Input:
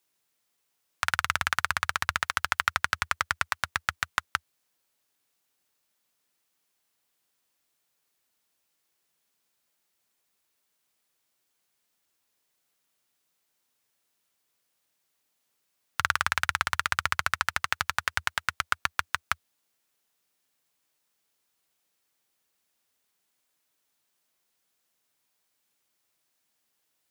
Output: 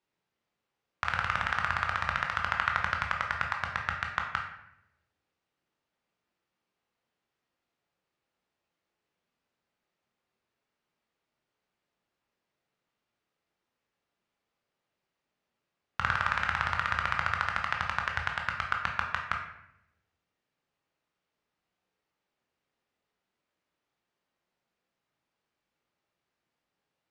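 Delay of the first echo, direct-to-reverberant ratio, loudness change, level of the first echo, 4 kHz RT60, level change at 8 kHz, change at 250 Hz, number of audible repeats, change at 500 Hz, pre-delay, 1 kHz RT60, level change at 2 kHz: none, 1.0 dB, -2.0 dB, none, 0.55 s, -16.5 dB, +3.5 dB, none, +1.0 dB, 15 ms, 0.70 s, -2.5 dB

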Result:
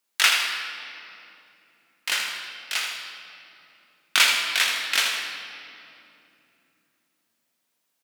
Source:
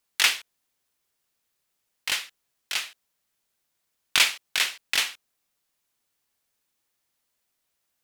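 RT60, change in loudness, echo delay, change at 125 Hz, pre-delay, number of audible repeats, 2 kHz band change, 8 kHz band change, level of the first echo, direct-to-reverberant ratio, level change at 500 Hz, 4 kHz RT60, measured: 2.9 s, +2.0 dB, 80 ms, n/a, 3 ms, 2, +4.0 dB, +2.0 dB, -7.0 dB, 0.0 dB, +3.5 dB, 1.9 s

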